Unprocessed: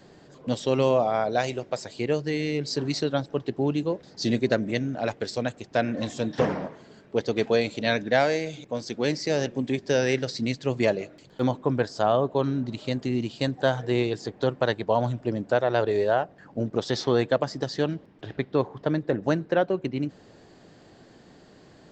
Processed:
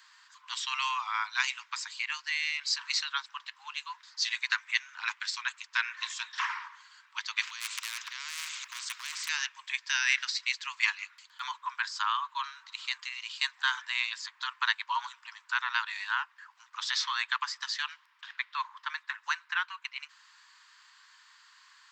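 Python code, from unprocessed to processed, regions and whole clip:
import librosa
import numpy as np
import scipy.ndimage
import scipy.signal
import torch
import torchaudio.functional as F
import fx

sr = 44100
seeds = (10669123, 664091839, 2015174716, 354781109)

y = fx.chain(x, sr, fx.over_compress(threshold_db=-28.0, ratio=-1.0),
    fx.overload_stage(gain_db=21.0),
    fx.spectral_comp(ratio=4.0), at=(7.41, 9.29))
y = scipy.signal.sosfilt(scipy.signal.butter(16, 960.0, 'highpass', fs=sr, output='sos'), y)
y = fx.dynamic_eq(y, sr, hz=2400.0, q=1.9, threshold_db=-48.0, ratio=4.0, max_db=4)
y = y * librosa.db_to_amplitude(2.5)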